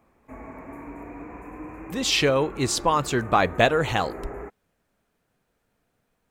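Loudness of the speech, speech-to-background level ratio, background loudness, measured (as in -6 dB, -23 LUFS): -22.5 LUFS, 17.0 dB, -39.5 LUFS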